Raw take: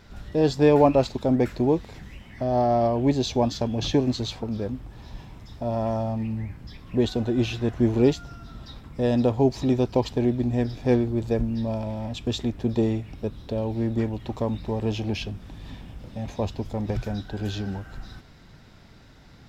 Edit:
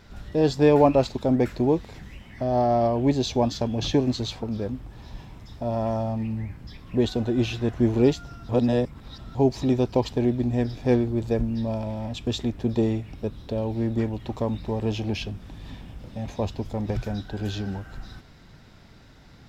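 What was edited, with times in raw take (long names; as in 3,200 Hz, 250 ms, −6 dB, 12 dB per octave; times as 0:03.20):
0:08.49–0:09.35: reverse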